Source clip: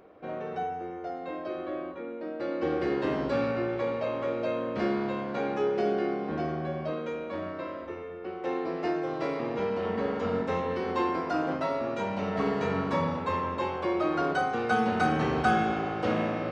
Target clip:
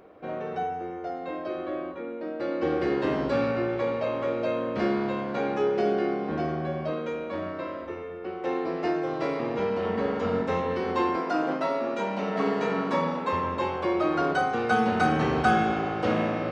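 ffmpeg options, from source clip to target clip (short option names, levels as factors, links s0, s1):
-filter_complex "[0:a]asettb=1/sr,asplit=3[s0][s1][s2];[s0]atrim=end=11.164[s3];[s1]atrim=start=11.16:end=13.33,asetpts=PTS-STARTPTS,afade=t=in:d=0.004:c=qsin,afade=t=out:st=2.166:d=0.004:c=qsin,highpass=f=180:w=0.5412,highpass=f=180:w=1.3066[s4];[s2]atrim=start=13.326[s5];[s3][s4]acrossfade=d=0.004:c1=hsin:c2=qsin[s6];[s6][s5]acrossfade=d=0.004:c1=qsin:c2=hsin,volume=1.33"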